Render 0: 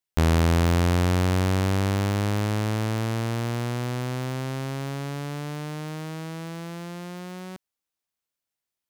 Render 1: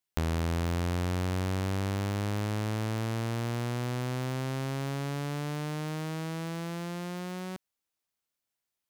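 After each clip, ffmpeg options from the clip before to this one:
-af "acompressor=threshold=0.0282:ratio=3"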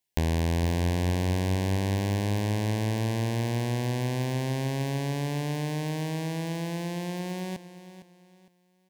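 -af "asuperstop=centerf=1300:order=4:qfactor=2.3,aecho=1:1:458|916|1374:0.211|0.0655|0.0203,volume=1.58"

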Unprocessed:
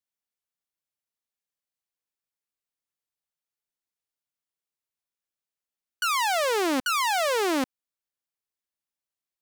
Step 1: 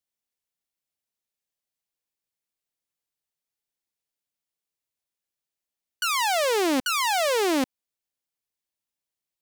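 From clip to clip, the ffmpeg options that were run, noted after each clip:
-af "equalizer=f=1300:w=1.5:g=-4.5,volume=1.33"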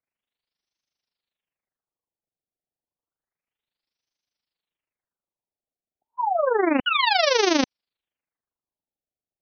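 -af "tremolo=f=25:d=0.71,highshelf=f=3600:g=9,afftfilt=real='re*lt(b*sr/1024,800*pow(6500/800,0.5+0.5*sin(2*PI*0.3*pts/sr)))':imag='im*lt(b*sr/1024,800*pow(6500/800,0.5+0.5*sin(2*PI*0.3*pts/sr)))':win_size=1024:overlap=0.75,volume=1.88"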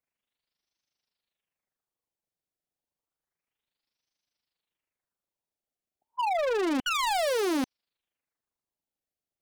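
-af "volume=17.8,asoftclip=hard,volume=0.0562"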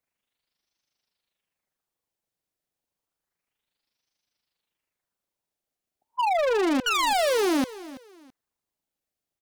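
-af "aecho=1:1:331|662:0.133|0.036,volume=1.58"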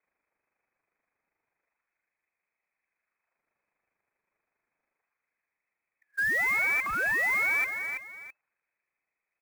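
-af "asoftclip=type=tanh:threshold=0.0237,lowpass=f=2200:t=q:w=0.5098,lowpass=f=2200:t=q:w=0.6013,lowpass=f=2200:t=q:w=0.9,lowpass=f=2200:t=q:w=2.563,afreqshift=-2600,acrusher=bits=4:mode=log:mix=0:aa=0.000001,volume=2.24"

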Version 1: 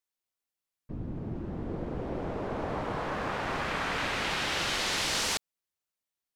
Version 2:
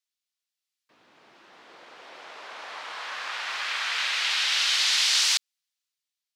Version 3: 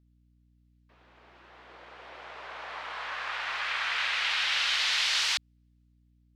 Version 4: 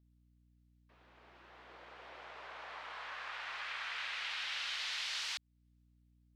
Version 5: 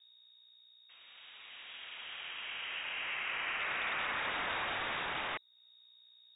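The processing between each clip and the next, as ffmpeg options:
-af "highpass=1200,equalizer=f=4300:w=0.58:g=11,dynaudnorm=f=260:g=7:m=1.78,volume=0.562"
-af "bass=f=250:g=-7,treble=f=4000:g=-11,aeval=exprs='val(0)+0.000708*(sin(2*PI*60*n/s)+sin(2*PI*2*60*n/s)/2+sin(2*PI*3*60*n/s)/3+sin(2*PI*4*60*n/s)/4+sin(2*PI*5*60*n/s)/5)':c=same"
-af "acompressor=threshold=0.00501:ratio=1.5,volume=0.596"
-af "aeval=exprs='(mod(47.3*val(0)+1,2)-1)/47.3':c=same,acrusher=bits=4:mode=log:mix=0:aa=0.000001,lowpass=f=3200:t=q:w=0.5098,lowpass=f=3200:t=q:w=0.6013,lowpass=f=3200:t=q:w=0.9,lowpass=f=3200:t=q:w=2.563,afreqshift=-3800,volume=2.24"

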